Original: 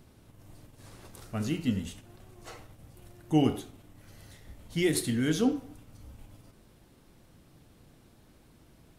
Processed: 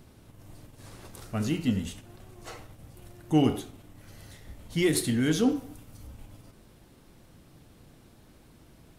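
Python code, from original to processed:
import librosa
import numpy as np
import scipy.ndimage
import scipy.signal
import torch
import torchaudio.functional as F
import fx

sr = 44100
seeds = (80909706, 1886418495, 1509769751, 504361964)

p1 = fx.high_shelf(x, sr, hz=7700.0, db=6.5, at=(5.46, 6.07))
p2 = 10.0 ** (-25.5 / 20.0) * np.tanh(p1 / 10.0 ** (-25.5 / 20.0))
y = p1 + (p2 * librosa.db_to_amplitude(-7.0))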